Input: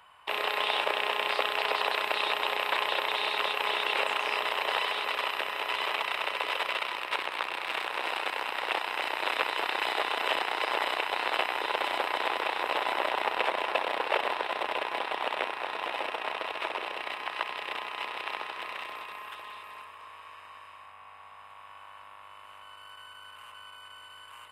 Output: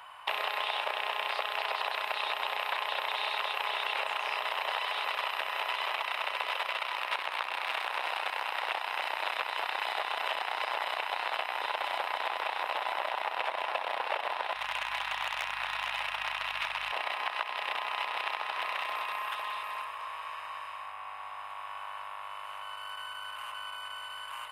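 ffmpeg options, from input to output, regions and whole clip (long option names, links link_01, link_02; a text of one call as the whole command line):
ffmpeg -i in.wav -filter_complex "[0:a]asettb=1/sr,asplit=3[link_01][link_02][link_03];[link_01]atrim=end=14.554[link_04];[link_02]atrim=start=14.55:end=16.92,asetpts=PTS-STARTPTS,afade=type=in:duration=0.004:curve=qsin,afade=type=out:start_time=2.366:duration=0.004:curve=qsin,highpass=1300,volume=25.5dB,asoftclip=hard,volume=-25.5dB,aeval=exprs='val(0)+0.00178*(sin(2*PI*50*n/s)+sin(2*PI*2*50*n/s)/2+sin(2*PI*3*50*n/s)/3+sin(2*PI*4*50*n/s)/4+sin(2*PI*5*50*n/s)/5)':channel_layout=same[link_05];[link_03]atrim=start=16.916[link_06];[link_04][link_05]acrossfade=duration=0.004:curve1=hsin:curve2=qsin[link_07];[link_07][link_06]acrossfade=duration=0.004:curve1=qsin:curve2=hsin,lowshelf=frequency=510:width_type=q:width=1.5:gain=-8,bandreject=frequency=7800:width=9.3,acompressor=threshold=-36dB:ratio=6,volume=6.5dB" out.wav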